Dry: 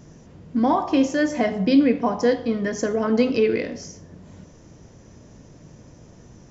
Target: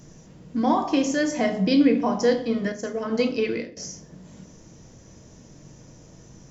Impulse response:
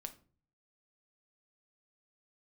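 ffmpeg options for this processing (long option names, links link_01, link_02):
-filter_complex "[0:a]highshelf=frequency=4700:gain=10.5,asettb=1/sr,asplit=3[link_01][link_02][link_03];[link_01]atrim=end=2.724[link_04];[link_02]atrim=start=2.72:end=3.77,asetpts=PTS-STARTPTS,afade=type=in:duration=0.004:curve=qsin,afade=type=out:start_time=1.046:duration=0.004:curve=qsin,agate=range=-33dB:threshold=-17dB:ratio=3:detection=peak[link_05];[link_03]atrim=start=3.766[link_06];[link_04][link_05]acrossfade=duration=0.004:curve1=hsin:curve2=qsin[link_07];[link_07][link_06]acrossfade=duration=0.004:curve1=qsin:curve2=hsin[link_08];[1:a]atrim=start_sample=2205,asetrate=41013,aresample=44100[link_09];[link_08][link_09]afir=irnorm=-1:irlink=0,volume=1.5dB"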